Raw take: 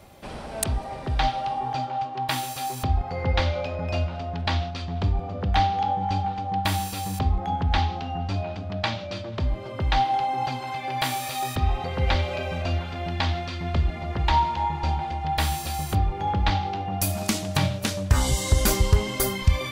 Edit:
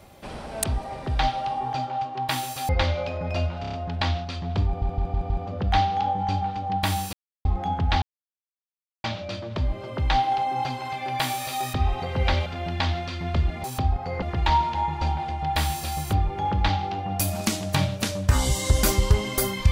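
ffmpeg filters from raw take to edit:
ffmpeg -i in.wav -filter_complex "[0:a]asplit=17[link_01][link_02][link_03][link_04][link_05][link_06][link_07][link_08][link_09][link_10][link_11][link_12][link_13][link_14][link_15][link_16][link_17];[link_01]atrim=end=2.692[link_18];[link_02]atrim=start=3.268:end=4.222[link_19];[link_03]atrim=start=4.188:end=4.222[link_20];[link_04]atrim=start=4.188:end=4.222[link_21];[link_05]atrim=start=4.188:end=4.222[link_22];[link_06]atrim=start=4.188:end=5.282[link_23];[link_07]atrim=start=5.118:end=5.282[link_24];[link_08]atrim=start=5.118:end=5.282[link_25];[link_09]atrim=start=5.118:end=5.282[link_26];[link_10]atrim=start=5.118:end=6.95,asetpts=PTS-STARTPTS,afade=type=out:start_time=1.828:duration=0.004:curve=hsin[link_27];[link_11]atrim=start=6.95:end=7.27,asetpts=PTS-STARTPTS,volume=0[link_28];[link_12]atrim=start=7.27:end=7.84,asetpts=PTS-STARTPTS,afade=type=in:duration=0.004:curve=hsin,afade=type=out:start_time=0.566:duration=0.004:curve=hsin[link_29];[link_13]atrim=start=7.84:end=8.86,asetpts=PTS-STARTPTS,volume=0[link_30];[link_14]atrim=start=8.86:end=12.282,asetpts=PTS-STARTPTS,afade=type=in:duration=0.004:curve=hsin[link_31];[link_15]atrim=start=12.858:end=14.042[link_32];[link_16]atrim=start=2.688:end=3.272[link_33];[link_17]atrim=start=14.038[link_34];[link_18][link_19]acrossfade=duration=0.004:curve1=hsin:curve2=hsin[link_35];[link_35][link_20]acrossfade=duration=0.004:curve1=hsin:curve2=hsin[link_36];[link_36][link_21]acrossfade=duration=0.004:curve1=hsin:curve2=hsin[link_37];[link_37][link_22]acrossfade=duration=0.004:curve1=hsin:curve2=hsin[link_38];[link_38][link_23]acrossfade=duration=0.004:curve1=hsin:curve2=hsin[link_39];[link_39][link_24]acrossfade=duration=0.004:curve1=hsin:curve2=hsin[link_40];[link_40][link_25]acrossfade=duration=0.004:curve1=hsin:curve2=hsin[link_41];[link_41][link_26]acrossfade=duration=0.004:curve1=hsin:curve2=hsin[link_42];[link_27][link_28][link_29][link_30][link_31]concat=n=5:v=0:a=1[link_43];[link_42][link_43]acrossfade=duration=0.004:curve1=hsin:curve2=hsin[link_44];[link_44][link_32]acrossfade=duration=0.004:curve1=hsin:curve2=hsin[link_45];[link_45][link_33]acrossfade=duration=0.004:curve1=hsin:curve2=hsin[link_46];[link_46][link_34]acrossfade=duration=0.004:curve1=hsin:curve2=hsin" out.wav

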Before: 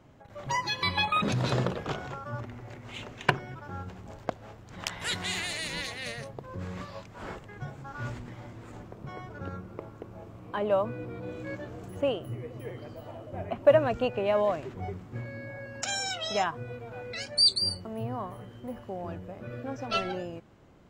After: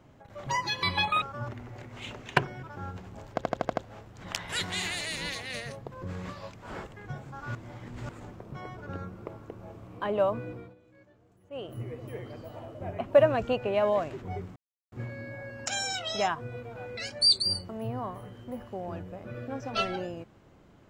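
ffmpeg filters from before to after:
ffmpeg -i in.wav -filter_complex "[0:a]asplit=12[link_01][link_02][link_03][link_04][link_05][link_06][link_07][link_08][link_09][link_10][link_11][link_12];[link_01]atrim=end=1.222[link_13];[link_02]atrim=start=2.138:end=4.332[link_14];[link_03]atrim=start=4.248:end=4.332[link_15];[link_04]atrim=start=4.248:end=4.332[link_16];[link_05]atrim=start=4.248:end=4.332[link_17];[link_06]atrim=start=4.248:end=4.332[link_18];[link_07]atrim=start=4.248:end=8.072[link_19];[link_08]atrim=start=8.068:end=8.612,asetpts=PTS-STARTPTS,areverse[link_20];[link_09]atrim=start=8.608:end=11.27,asetpts=PTS-STARTPTS,afade=type=out:start_time=2.282:duration=0.38:curve=qsin:silence=0.0891251[link_21];[link_10]atrim=start=11.27:end=12.03,asetpts=PTS-STARTPTS,volume=-21dB[link_22];[link_11]atrim=start=12.03:end=15.08,asetpts=PTS-STARTPTS,afade=type=in:duration=0.38:curve=qsin:silence=0.0891251,afade=type=out:start_time=3.046:duration=0.004:curve=hsin,apad=pad_dur=0.36[link_23];[link_12]atrim=start=15.08,asetpts=PTS-STARTPTS,afade=type=in:duration=0.004:curve=hsin[link_24];[link_13][link_14]acrossfade=duration=0.004:curve1=hsin:curve2=hsin[link_25];[link_25][link_15]acrossfade=duration=0.004:curve1=hsin:curve2=hsin[link_26];[link_26][link_16]acrossfade=duration=0.004:curve1=hsin:curve2=hsin[link_27];[link_27][link_17]acrossfade=duration=0.004:curve1=hsin:curve2=hsin[link_28];[link_28][link_18]acrossfade=duration=0.004:curve1=hsin:curve2=hsin[link_29];[link_29][link_19]acrossfade=duration=0.004:curve1=hsin:curve2=hsin[link_30];[link_30][link_20]acrossfade=duration=0.004:curve1=hsin:curve2=hsin[link_31];[link_21][link_22][link_23][link_24]concat=n=4:v=0:a=1[link_32];[link_31][link_32]acrossfade=duration=0.004:curve1=hsin:curve2=hsin" out.wav

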